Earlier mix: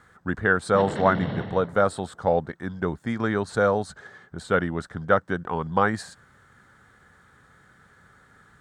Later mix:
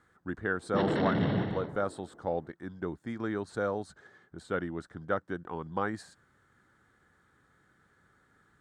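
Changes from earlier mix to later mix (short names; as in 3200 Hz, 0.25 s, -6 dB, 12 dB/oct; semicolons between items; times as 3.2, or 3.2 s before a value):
speech -11.5 dB; master: add bell 320 Hz +7.5 dB 0.53 oct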